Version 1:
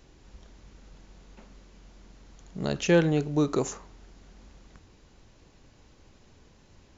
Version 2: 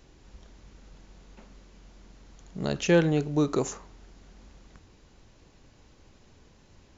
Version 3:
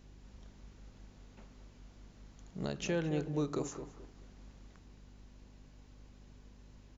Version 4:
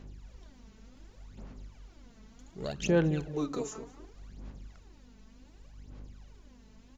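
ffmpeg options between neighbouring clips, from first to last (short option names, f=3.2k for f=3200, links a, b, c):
-af anull
-filter_complex "[0:a]alimiter=limit=-19dB:level=0:latency=1:release=330,aeval=exprs='val(0)+0.00316*(sin(2*PI*50*n/s)+sin(2*PI*2*50*n/s)/2+sin(2*PI*3*50*n/s)/3+sin(2*PI*4*50*n/s)/4+sin(2*PI*5*50*n/s)/5)':c=same,asplit=2[a][b];[b]adelay=216,lowpass=f=1.4k:p=1,volume=-9dB,asplit=2[c][d];[d]adelay=216,lowpass=f=1.4k:p=1,volume=0.28,asplit=2[e][f];[f]adelay=216,lowpass=f=1.4k:p=1,volume=0.28[g];[a][c][e][g]amix=inputs=4:normalize=0,volume=-6dB"
-af "aphaser=in_gain=1:out_gain=1:delay=4.6:decay=0.66:speed=0.67:type=sinusoidal"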